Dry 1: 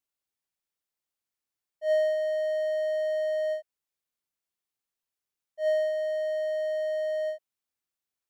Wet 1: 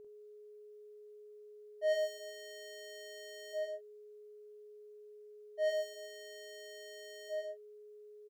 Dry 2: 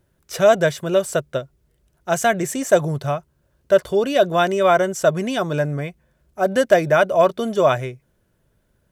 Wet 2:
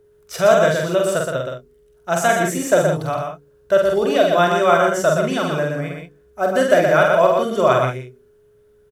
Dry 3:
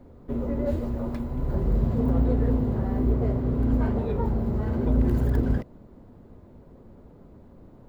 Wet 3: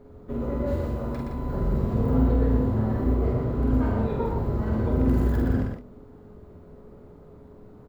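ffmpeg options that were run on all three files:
-filter_complex "[0:a]equalizer=f=1300:t=o:w=0.32:g=4.5,bandreject=f=48.53:t=h:w=4,bandreject=f=97.06:t=h:w=4,bandreject=f=145.59:t=h:w=4,bandreject=f=194.12:t=h:w=4,bandreject=f=242.65:t=h:w=4,bandreject=f=291.18:t=h:w=4,bandreject=f=339.71:t=h:w=4,bandreject=f=388.24:t=h:w=4,bandreject=f=436.77:t=h:w=4,bandreject=f=485.3:t=h:w=4,asplit=2[s0][s1];[s1]aecho=0:1:120:0.596[s2];[s0][s2]amix=inputs=2:normalize=0,aeval=exprs='val(0)+0.00316*sin(2*PI*420*n/s)':c=same,asplit=2[s3][s4];[s4]aecho=0:1:46|57|70:0.668|0.126|0.211[s5];[s3][s5]amix=inputs=2:normalize=0,volume=0.841"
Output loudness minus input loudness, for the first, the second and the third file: -12.5 LU, +1.5 LU, +0.5 LU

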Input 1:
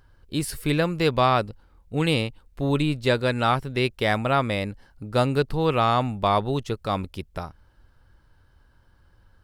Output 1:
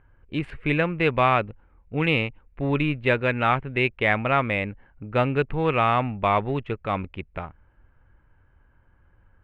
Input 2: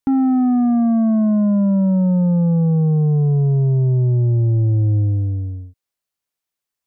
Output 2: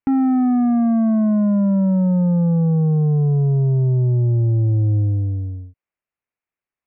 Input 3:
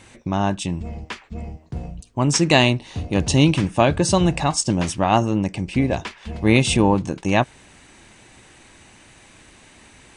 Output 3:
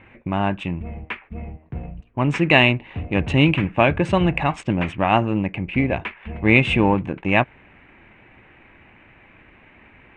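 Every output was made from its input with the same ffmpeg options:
-af "adynamicsmooth=sensitivity=6:basefreq=2200,lowpass=f=8900:w=0.5412,lowpass=f=8900:w=1.3066,highshelf=f=3600:t=q:w=3:g=-14,volume=0.891"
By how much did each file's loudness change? 0.0 LU, -1.0 LU, 0.0 LU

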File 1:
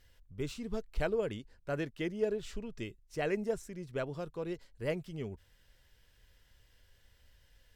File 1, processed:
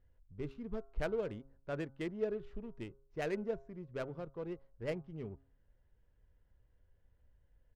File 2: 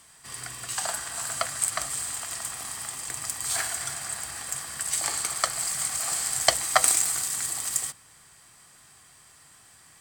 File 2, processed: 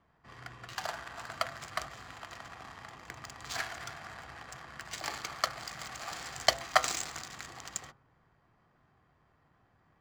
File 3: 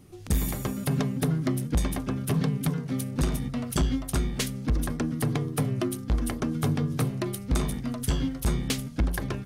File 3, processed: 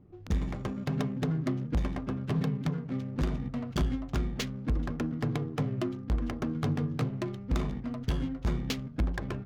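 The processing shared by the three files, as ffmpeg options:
-af "aresample=16000,aresample=44100,adynamicsmooth=sensitivity=7.5:basefreq=950,bandreject=f=135.7:t=h:w=4,bandreject=f=271.4:t=h:w=4,bandreject=f=407.1:t=h:w=4,bandreject=f=542.8:t=h:w=4,bandreject=f=678.5:t=h:w=4,bandreject=f=814.2:t=h:w=4,bandreject=f=949.9:t=h:w=4,bandreject=f=1085.6:t=h:w=4,bandreject=f=1221.3:t=h:w=4,bandreject=f=1357:t=h:w=4,bandreject=f=1492.7:t=h:w=4,volume=0.668"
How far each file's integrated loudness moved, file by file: -4.0 LU, -10.5 LU, -4.0 LU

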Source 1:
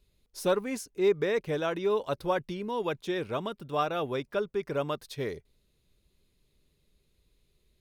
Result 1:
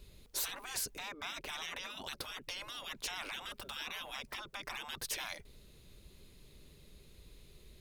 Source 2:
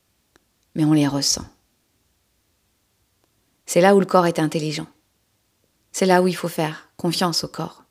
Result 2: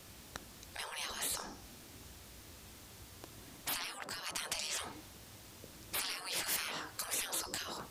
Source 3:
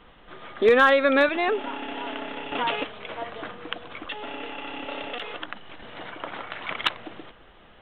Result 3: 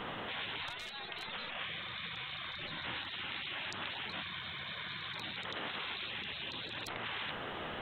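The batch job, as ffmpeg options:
-af "acompressor=threshold=0.0224:ratio=10,afftfilt=real='re*lt(hypot(re,im),0.01)':imag='im*lt(hypot(re,im),0.01)':win_size=1024:overlap=0.75,volume=4.22"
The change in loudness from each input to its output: -10.0 LU, -18.5 LU, -14.0 LU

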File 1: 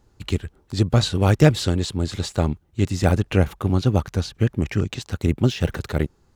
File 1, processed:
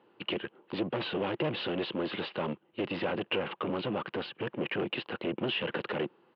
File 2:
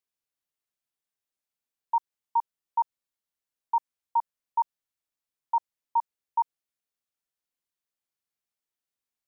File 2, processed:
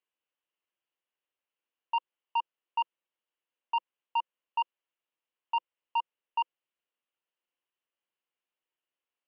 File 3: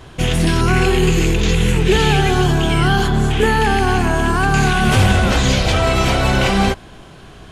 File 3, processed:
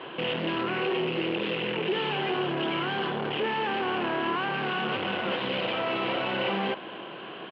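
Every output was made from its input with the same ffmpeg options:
-filter_complex "[0:a]alimiter=limit=0.237:level=0:latency=1:release=49,aeval=exprs='0.237*(cos(1*acos(clip(val(0)/0.237,-1,1)))-cos(1*PI/2))+0.0015*(cos(4*acos(clip(val(0)/0.237,-1,1)))-cos(4*PI/2))+0.0211*(cos(5*acos(clip(val(0)/0.237,-1,1)))-cos(5*PI/2))+0.0376*(cos(7*acos(clip(val(0)/0.237,-1,1)))-cos(7*PI/2))':c=same,aresample=11025,asoftclip=type=tanh:threshold=0.0501,aresample=44100,asplit=2[s0][s1];[s1]highpass=f=720:p=1,volume=12.6,asoftclip=type=tanh:threshold=0.0944[s2];[s0][s2]amix=inputs=2:normalize=0,lowpass=f=2500:p=1,volume=0.501,highpass=f=140:w=0.5412,highpass=f=140:w=1.3066,equalizer=f=200:t=q:w=4:g=4,equalizer=f=340:t=q:w=4:g=8,equalizer=f=510:t=q:w=4:g=7,equalizer=f=990:t=q:w=4:g=4,equalizer=f=2900:t=q:w=4:g=10,lowpass=f=3300:w=0.5412,lowpass=f=3300:w=1.3066,volume=0.596"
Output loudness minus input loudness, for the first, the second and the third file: -12.0 LU, -4.0 LU, -13.0 LU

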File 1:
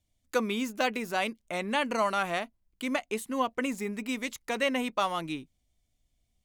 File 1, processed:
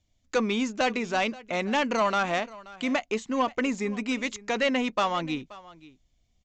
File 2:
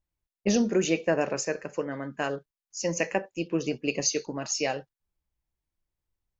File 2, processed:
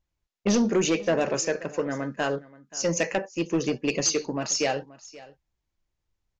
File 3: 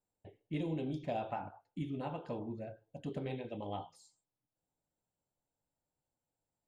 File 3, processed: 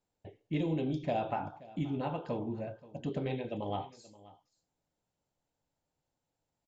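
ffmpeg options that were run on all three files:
-af "aresample=16000,asoftclip=type=tanh:threshold=0.0841,aresample=44100,aecho=1:1:529:0.1,volume=1.78"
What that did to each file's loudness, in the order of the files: +3.5 LU, +2.5 LU, +5.0 LU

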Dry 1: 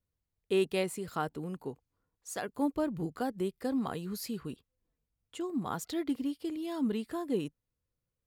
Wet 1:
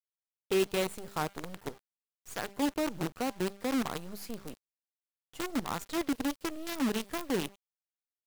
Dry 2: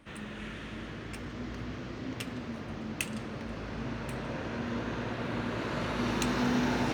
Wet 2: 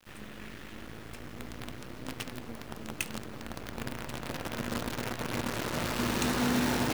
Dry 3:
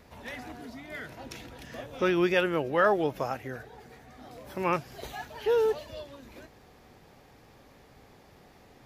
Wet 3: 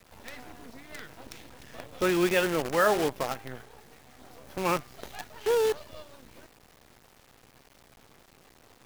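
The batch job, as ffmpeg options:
-af "bandreject=f=198.7:t=h:w=4,bandreject=f=397.4:t=h:w=4,bandreject=f=596.1:t=h:w=4,bandreject=f=794.8:t=h:w=4,bandreject=f=993.5:t=h:w=4,bandreject=f=1192.2:t=h:w=4,bandreject=f=1390.9:t=h:w=4,bandreject=f=1589.6:t=h:w=4,bandreject=f=1788.3:t=h:w=4,bandreject=f=1987:t=h:w=4,bandreject=f=2185.7:t=h:w=4,bandreject=f=2384.4:t=h:w=4,bandreject=f=2583.1:t=h:w=4,bandreject=f=2781.8:t=h:w=4,bandreject=f=2980.5:t=h:w=4,bandreject=f=3179.2:t=h:w=4,bandreject=f=3377.9:t=h:w=4,bandreject=f=3576.6:t=h:w=4,bandreject=f=3775.3:t=h:w=4,bandreject=f=3974:t=h:w=4,bandreject=f=4172.7:t=h:w=4,bandreject=f=4371.4:t=h:w=4,bandreject=f=4570.1:t=h:w=4,bandreject=f=4768.8:t=h:w=4,bandreject=f=4967.5:t=h:w=4,bandreject=f=5166.2:t=h:w=4,bandreject=f=5364.9:t=h:w=4,acrusher=bits=6:dc=4:mix=0:aa=0.000001"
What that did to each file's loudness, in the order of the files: +0.5 LU, +1.0 LU, +1.5 LU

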